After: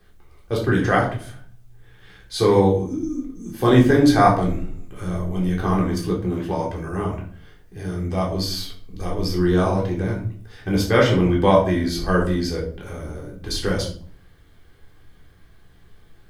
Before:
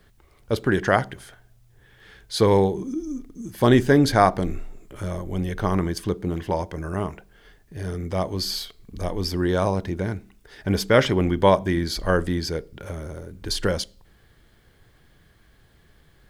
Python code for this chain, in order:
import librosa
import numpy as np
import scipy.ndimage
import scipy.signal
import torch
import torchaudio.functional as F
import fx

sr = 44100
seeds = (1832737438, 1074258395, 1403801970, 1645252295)

y = fx.room_shoebox(x, sr, seeds[0], volume_m3=480.0, walls='furnished', distance_m=3.7)
y = y * 10.0 ** (-4.5 / 20.0)